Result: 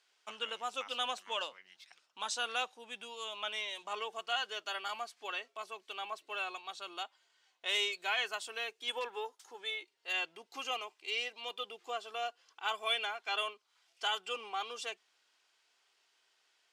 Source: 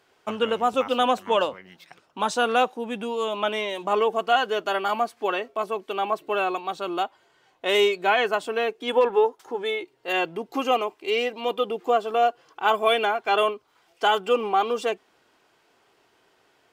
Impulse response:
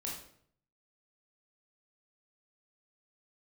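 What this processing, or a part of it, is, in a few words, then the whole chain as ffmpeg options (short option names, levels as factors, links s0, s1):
piezo pickup straight into a mixer: -filter_complex "[0:a]asettb=1/sr,asplit=3[s0][s1][s2];[s0]atrim=end=7.924[s3];[s1]atrim=start=7.92:end=9.61,asetpts=PTS-STARTPTS,afade=t=in:d=0.004:c=qsin,afade=t=out:st=1.686:d=0.004:c=qsin,highshelf=f=9400:g=10[s4];[s2]atrim=start=9.606[s5];[s3][s4]acrossfade=d=0.004:c1=hsin:c2=qsin[s6];[s6][s5]acrossfade=d=0.004:c1=qsin:c2=hsin,lowpass=5900,aderivative,volume=1.19"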